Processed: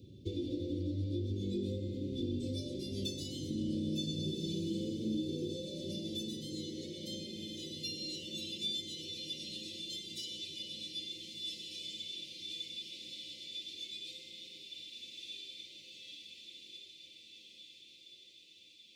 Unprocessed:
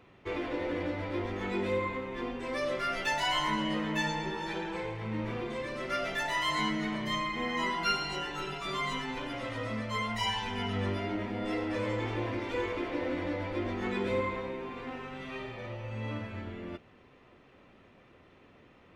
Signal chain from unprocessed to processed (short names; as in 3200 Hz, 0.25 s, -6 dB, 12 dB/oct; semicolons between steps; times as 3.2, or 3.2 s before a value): high-pass sweep 85 Hz -> 2300 Hz, 4.01–7.12; compressor, threshold -37 dBFS, peak gain reduction 13.5 dB; elliptic band-stop 340–4100 Hz, stop band 60 dB; small resonant body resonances 550/1300/3500 Hz, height 12 dB, ringing for 50 ms; on a send: diffused feedback echo 1.406 s, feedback 61%, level -6 dB; on the sum: gain +5.5 dB